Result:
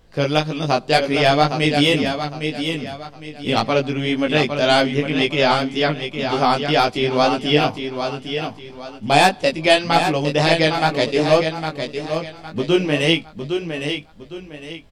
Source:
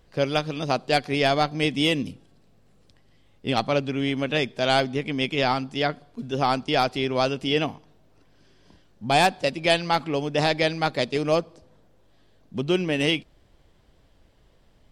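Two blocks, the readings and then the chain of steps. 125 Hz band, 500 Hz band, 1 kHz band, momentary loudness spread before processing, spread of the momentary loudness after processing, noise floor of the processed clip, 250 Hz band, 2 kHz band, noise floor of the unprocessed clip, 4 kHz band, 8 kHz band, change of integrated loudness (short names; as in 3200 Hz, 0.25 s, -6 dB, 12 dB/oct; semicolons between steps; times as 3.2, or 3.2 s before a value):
+6.5 dB, +6.5 dB, +6.5 dB, 6 LU, 13 LU, -41 dBFS, +6.5 dB, +6.5 dB, -58 dBFS, +6.5 dB, +6.5 dB, +5.5 dB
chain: on a send: feedback echo 0.809 s, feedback 32%, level -7 dB; on the sum: chorus 1.9 Hz, delay 18 ms, depth 2.8 ms; gain +8.5 dB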